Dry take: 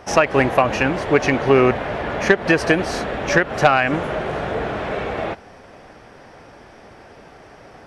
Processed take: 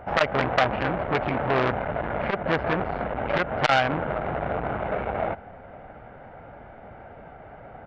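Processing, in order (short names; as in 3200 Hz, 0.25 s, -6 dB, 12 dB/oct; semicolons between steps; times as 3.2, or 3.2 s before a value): Gaussian blur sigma 3.9 samples; comb 1.4 ms, depth 46%; core saturation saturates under 3000 Hz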